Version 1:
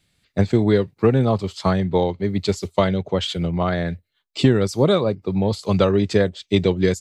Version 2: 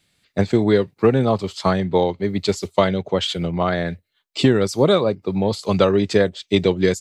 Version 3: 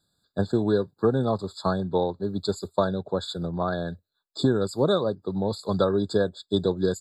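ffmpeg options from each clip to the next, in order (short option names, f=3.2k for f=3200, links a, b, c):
-af "lowshelf=f=130:g=-9.5,volume=2.5dB"
-af "afftfilt=real='re*eq(mod(floor(b*sr/1024/1700),2),0)':imag='im*eq(mod(floor(b*sr/1024/1700),2),0)':win_size=1024:overlap=0.75,volume=-6.5dB"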